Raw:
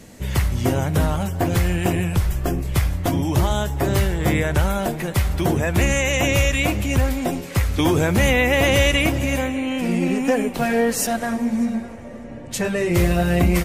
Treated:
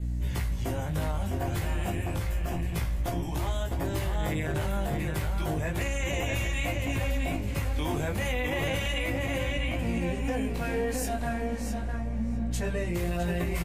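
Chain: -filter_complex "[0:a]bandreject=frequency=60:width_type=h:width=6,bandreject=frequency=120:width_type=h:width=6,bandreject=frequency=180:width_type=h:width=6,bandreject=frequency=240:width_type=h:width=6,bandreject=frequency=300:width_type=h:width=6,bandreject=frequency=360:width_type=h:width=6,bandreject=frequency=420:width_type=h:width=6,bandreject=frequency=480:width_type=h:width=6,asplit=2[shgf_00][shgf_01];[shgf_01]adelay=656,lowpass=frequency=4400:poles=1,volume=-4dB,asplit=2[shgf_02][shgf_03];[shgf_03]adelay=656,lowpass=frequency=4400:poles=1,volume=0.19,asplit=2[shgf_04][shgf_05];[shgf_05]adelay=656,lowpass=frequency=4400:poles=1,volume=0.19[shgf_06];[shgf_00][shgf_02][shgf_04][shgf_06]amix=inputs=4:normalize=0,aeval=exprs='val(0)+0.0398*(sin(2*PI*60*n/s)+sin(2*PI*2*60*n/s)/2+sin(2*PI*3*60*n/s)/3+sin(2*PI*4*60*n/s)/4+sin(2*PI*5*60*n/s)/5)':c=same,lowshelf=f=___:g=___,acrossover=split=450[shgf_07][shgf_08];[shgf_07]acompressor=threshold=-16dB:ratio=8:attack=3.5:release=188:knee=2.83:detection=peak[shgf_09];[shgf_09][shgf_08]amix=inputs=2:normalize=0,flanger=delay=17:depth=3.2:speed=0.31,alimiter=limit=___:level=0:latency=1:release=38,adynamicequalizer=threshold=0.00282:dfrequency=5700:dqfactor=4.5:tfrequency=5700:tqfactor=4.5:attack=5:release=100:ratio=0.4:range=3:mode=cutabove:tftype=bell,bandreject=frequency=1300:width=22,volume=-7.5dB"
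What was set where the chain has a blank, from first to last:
170, 9, -12.5dB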